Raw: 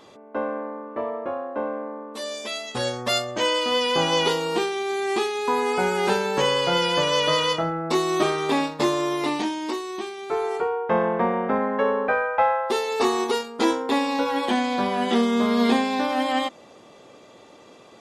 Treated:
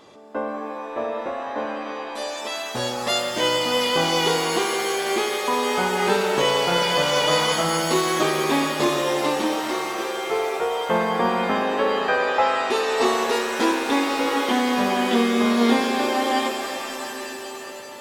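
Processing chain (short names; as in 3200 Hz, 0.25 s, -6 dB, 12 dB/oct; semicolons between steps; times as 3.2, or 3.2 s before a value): shimmer reverb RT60 3.4 s, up +7 st, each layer -2 dB, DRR 5.5 dB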